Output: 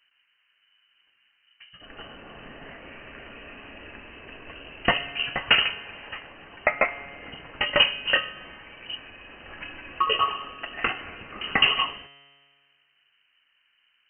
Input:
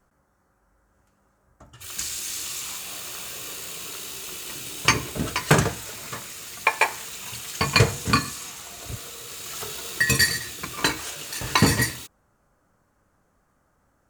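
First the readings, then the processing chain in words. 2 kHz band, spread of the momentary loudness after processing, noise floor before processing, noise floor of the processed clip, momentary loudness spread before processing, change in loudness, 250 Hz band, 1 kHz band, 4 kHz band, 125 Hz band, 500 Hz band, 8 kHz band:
-0.5 dB, 23 LU, -67 dBFS, -69 dBFS, 15 LU, +1.0 dB, -11.0 dB, -1.0 dB, +3.0 dB, -17.5 dB, -2.0 dB, under -40 dB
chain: frequency inversion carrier 3 kHz; feedback comb 140 Hz, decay 1.8 s, mix 60%; trim +6 dB

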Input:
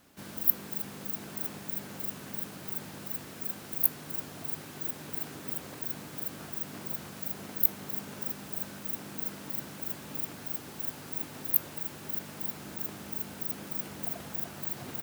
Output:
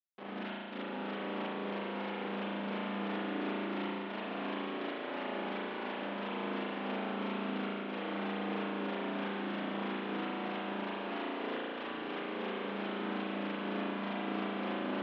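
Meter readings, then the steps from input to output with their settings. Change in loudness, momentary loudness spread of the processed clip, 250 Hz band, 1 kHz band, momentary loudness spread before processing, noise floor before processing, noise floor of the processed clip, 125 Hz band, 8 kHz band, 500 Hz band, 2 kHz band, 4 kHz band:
-4.0 dB, 3 LU, +7.5 dB, +9.5 dB, 10 LU, -46 dBFS, -41 dBFS, -0.5 dB, under -35 dB, +9.5 dB, +7.5 dB, +3.5 dB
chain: compression 12:1, threshold -34 dBFS, peak gain reduction 18.5 dB; Schmitt trigger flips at -39 dBFS; elliptic band-pass 260–3300 Hz, stop band 40 dB; echo whose repeats swap between lows and highs 433 ms, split 1 kHz, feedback 85%, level -7 dB; spring tank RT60 1.9 s, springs 35 ms, chirp 40 ms, DRR -7.5 dB

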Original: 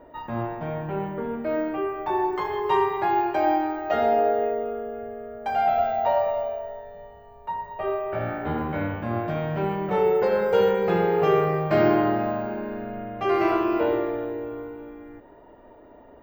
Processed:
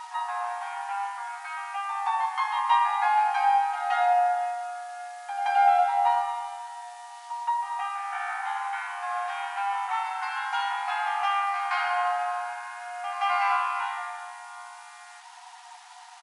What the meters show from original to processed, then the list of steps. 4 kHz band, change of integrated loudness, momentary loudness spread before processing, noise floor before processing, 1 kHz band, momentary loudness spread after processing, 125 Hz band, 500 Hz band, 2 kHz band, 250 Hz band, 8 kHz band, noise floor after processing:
+3.0 dB, -2.5 dB, 13 LU, -49 dBFS, +2.5 dB, 19 LU, under -40 dB, under -10 dB, +3.0 dB, under -40 dB, no reading, -47 dBFS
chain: frequency shift +16 Hz; in parallel at +2 dB: compression 12:1, threshold -36 dBFS, peak gain reduction 21 dB; on the sum: bit crusher 8-bit; on a send: reverse echo 173 ms -10.5 dB; on the sum: FFT band-pass 710–11000 Hz; doubling 15 ms -10.5 dB

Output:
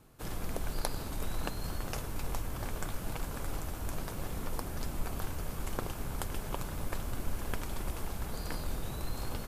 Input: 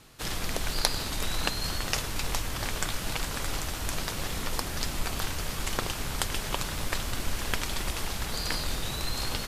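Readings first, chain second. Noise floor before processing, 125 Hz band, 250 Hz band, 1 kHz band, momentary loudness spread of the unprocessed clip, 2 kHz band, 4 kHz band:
-35 dBFS, -3.0 dB, -3.5 dB, -6.5 dB, 3 LU, -11.5 dB, -15.5 dB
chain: peaking EQ 4.1 kHz -13 dB 2.7 oct; band-stop 1.9 kHz, Q 21; trim -3 dB

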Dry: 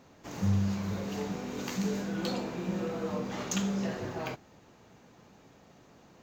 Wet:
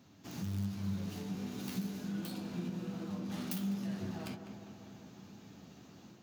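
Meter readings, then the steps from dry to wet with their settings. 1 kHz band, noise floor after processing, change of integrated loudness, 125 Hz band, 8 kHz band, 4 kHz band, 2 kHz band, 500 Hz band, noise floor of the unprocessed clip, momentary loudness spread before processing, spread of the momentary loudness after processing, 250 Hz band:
-11.0 dB, -58 dBFS, -6.5 dB, -6.0 dB, -10.0 dB, -7.0 dB, -10.0 dB, -12.5 dB, -59 dBFS, 7 LU, 16 LU, -4.5 dB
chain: tracing distortion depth 0.47 ms; level rider gain up to 5.5 dB; in parallel at -8 dB: integer overflow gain 17 dB; on the sum: high-pass 95 Hz; compression 6:1, threshold -33 dBFS, peak gain reduction 13 dB; flange 1.3 Hz, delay 8.7 ms, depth 3.9 ms, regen +56%; graphic EQ 500/1000/2000/8000 Hz -12/-7/-7/-5 dB; tape echo 201 ms, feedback 78%, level -7 dB, low-pass 1.7 kHz; trim +2.5 dB

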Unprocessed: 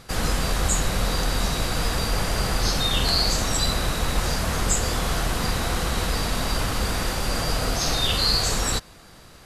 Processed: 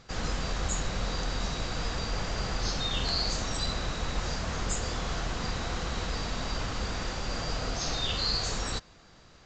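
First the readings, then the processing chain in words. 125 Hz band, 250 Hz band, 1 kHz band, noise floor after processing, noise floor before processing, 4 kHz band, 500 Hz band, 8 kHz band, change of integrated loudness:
-8.0 dB, -8.0 dB, -8.0 dB, -55 dBFS, -47 dBFS, -8.0 dB, -8.0 dB, -10.5 dB, -8.5 dB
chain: trim -8 dB; µ-law 128 kbps 16 kHz

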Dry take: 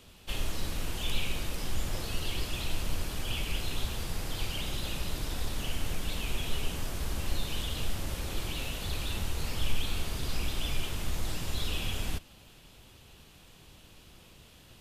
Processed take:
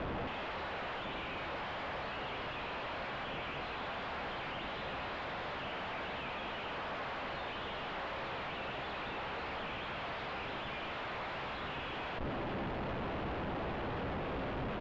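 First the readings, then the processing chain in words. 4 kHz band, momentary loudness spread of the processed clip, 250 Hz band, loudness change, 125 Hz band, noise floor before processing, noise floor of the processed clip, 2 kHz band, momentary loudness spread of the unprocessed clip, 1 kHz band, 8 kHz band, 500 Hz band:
-8.0 dB, 2 LU, -1.5 dB, -4.0 dB, -9.0 dB, -56 dBFS, -42 dBFS, +1.5 dB, 20 LU, +6.5 dB, under -25 dB, +3.5 dB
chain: tracing distortion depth 0.16 ms; high-pass 580 Hz 24 dB/octave; compression, threshold -42 dBFS, peak gain reduction 9 dB; peak limiter -41.5 dBFS, peak gain reduction 11.5 dB; Schmitt trigger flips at -55 dBFS; distance through air 460 m; doubling 15 ms -12 dB; resampled via 16 kHz; trim +16.5 dB

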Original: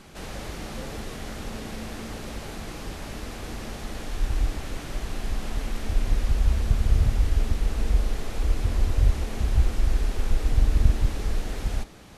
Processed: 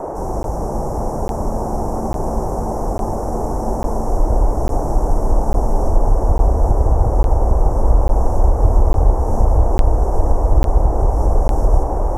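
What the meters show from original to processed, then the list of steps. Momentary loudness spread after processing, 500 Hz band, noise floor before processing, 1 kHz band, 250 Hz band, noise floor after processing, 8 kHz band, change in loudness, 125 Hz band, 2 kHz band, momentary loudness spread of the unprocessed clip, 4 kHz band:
6 LU, +17.5 dB, -38 dBFS, +18.5 dB, +11.5 dB, -22 dBFS, +3.0 dB, +10.0 dB, +9.0 dB, -4.5 dB, 12 LU, no reading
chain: Chebyshev band-stop 1.1–5.5 kHz, order 5; bass shelf 320 Hz +10.5 dB; compression, threshold -14 dBFS, peak gain reduction 13.5 dB; band noise 300–900 Hz -30 dBFS; on a send: multi-head delay 323 ms, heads all three, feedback 71%, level -13 dB; on the sum: crackling interface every 0.85 s, samples 512, zero, from 0.43 s; trim +4 dB

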